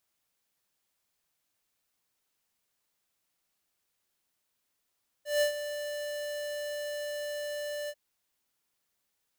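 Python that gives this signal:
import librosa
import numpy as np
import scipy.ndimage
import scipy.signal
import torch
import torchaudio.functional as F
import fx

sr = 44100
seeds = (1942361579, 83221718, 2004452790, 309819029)

y = fx.adsr_tone(sr, wave='square', hz=589.0, attack_ms=164.0, decay_ms=105.0, sustain_db=-11.5, held_s=2.64, release_ms=52.0, level_db=-24.5)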